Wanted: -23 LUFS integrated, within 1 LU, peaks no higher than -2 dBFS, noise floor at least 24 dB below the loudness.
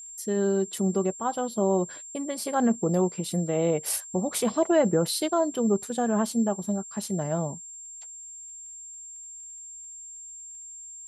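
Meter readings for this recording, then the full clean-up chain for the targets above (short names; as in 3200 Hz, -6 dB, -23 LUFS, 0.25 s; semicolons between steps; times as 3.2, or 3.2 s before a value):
ticks 23/s; steady tone 7400 Hz; tone level -40 dBFS; loudness -26.5 LUFS; peak -11.5 dBFS; loudness target -23.0 LUFS
-> de-click; notch 7400 Hz, Q 30; gain +3.5 dB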